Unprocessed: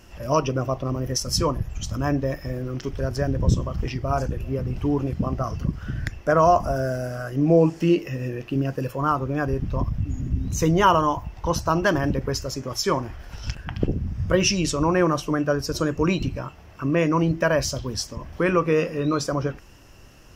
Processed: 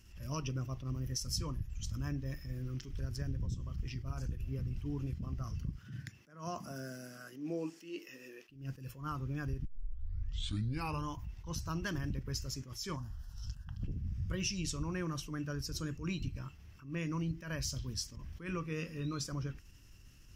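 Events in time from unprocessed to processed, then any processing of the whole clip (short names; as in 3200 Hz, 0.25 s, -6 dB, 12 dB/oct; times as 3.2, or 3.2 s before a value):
5.76–8.48 HPF 110 Hz -> 370 Hz 24 dB/oct
9.65 tape start 1.42 s
12.96–13.84 fixed phaser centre 940 Hz, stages 4
whole clip: passive tone stack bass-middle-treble 6-0-2; compressor 5:1, threshold -39 dBFS; attack slew limiter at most 130 dB/s; gain +6.5 dB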